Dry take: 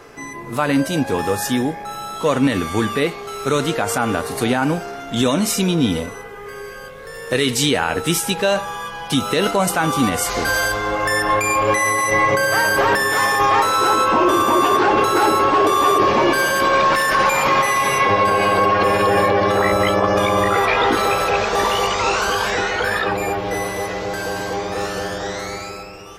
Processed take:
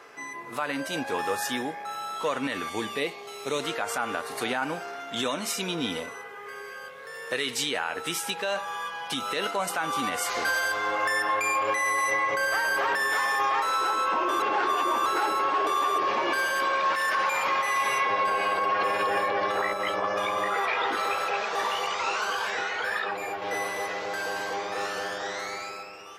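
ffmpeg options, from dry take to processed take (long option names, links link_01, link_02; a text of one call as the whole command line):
ffmpeg -i in.wav -filter_complex "[0:a]asettb=1/sr,asplit=3[link_01][link_02][link_03];[link_01]atrim=end=2.694[link_04];[link_02]atrim=start=2.69:end=3.64,asetpts=PTS-STARTPTS,afade=type=in:duration=0.004:curve=qsin,afade=type=out:start_time=0.946:duration=0.004:curve=qsin,equalizer=frequency=1400:width=2.3:gain=-12.5[link_05];[link_03]atrim=start=3.636[link_06];[link_04][link_05]acrossfade=duration=0.004:curve1=hsin:curve2=qsin[link_07];[link_07][link_06]acrossfade=duration=0.004:curve1=qsin:curve2=hsin,asettb=1/sr,asplit=3[link_08][link_09][link_10];[link_08]atrim=end=19.734[link_11];[link_09]atrim=start=19.73:end=23.42,asetpts=PTS-STARTPTS,afade=type=in:duration=0.004:curve=qsin,afade=type=out:start_time=3.686:duration=0.004:curve=qsin,flanger=delay=4.7:depth=6.9:regen=-53:speed=1.2:shape=sinusoidal[link_12];[link_10]atrim=start=23.416[link_13];[link_11][link_12]acrossfade=duration=0.004:curve1=hsin:curve2=qsin[link_14];[link_14][link_13]acrossfade=duration=0.004:curve1=qsin:curve2=hsin,asplit=3[link_15][link_16][link_17];[link_15]atrim=end=14.402[link_18];[link_16]atrim=start=14.398:end=15.062,asetpts=PTS-STARTPTS,areverse[link_19];[link_17]atrim=start=15.058[link_20];[link_18][link_19]acrossfade=duration=0.004:curve1=hsin:curve2=hsin[link_21];[link_21][link_20]acrossfade=duration=0.004:curve1=hsin:curve2=hsin,highpass=frequency=1300:poles=1,highshelf=frequency=3700:gain=-10,alimiter=limit=-17dB:level=0:latency=1:release=243" out.wav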